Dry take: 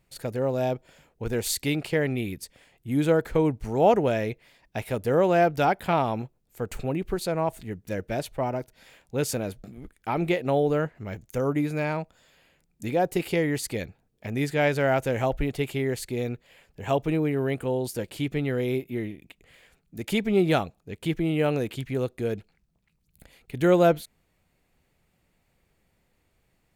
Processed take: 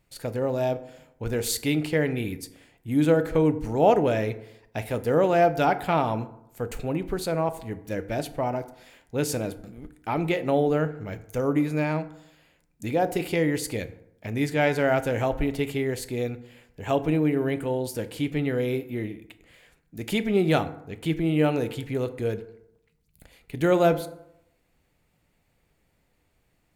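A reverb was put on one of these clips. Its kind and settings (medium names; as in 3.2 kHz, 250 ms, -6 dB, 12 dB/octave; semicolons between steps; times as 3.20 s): FDN reverb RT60 0.79 s, low-frequency decay 1×, high-frequency decay 0.5×, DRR 10 dB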